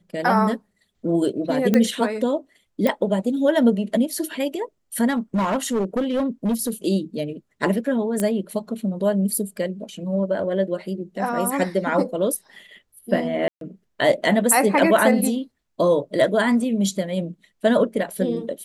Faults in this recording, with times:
0:01.74: click −6 dBFS
0:02.87: click −9 dBFS
0:05.09–0:06.70: clipping −17.5 dBFS
0:08.20: click −11 dBFS
0:13.48–0:13.61: drop-out 132 ms

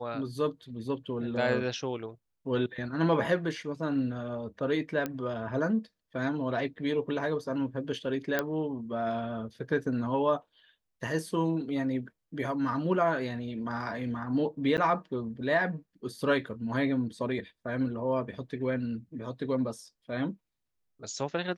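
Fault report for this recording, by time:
0:05.06: click −18 dBFS
0:08.39: click −13 dBFS
0:14.77–0:14.78: drop-out 9.1 ms

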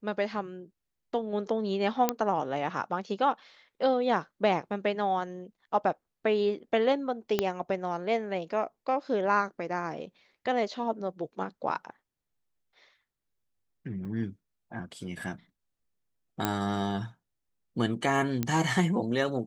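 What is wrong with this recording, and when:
0:02.09: click −9 dBFS
0:07.39: click −11 dBFS
0:14.05: drop-out 3.9 ms
0:16.45: click −11 dBFS
0:18.43: click −14 dBFS

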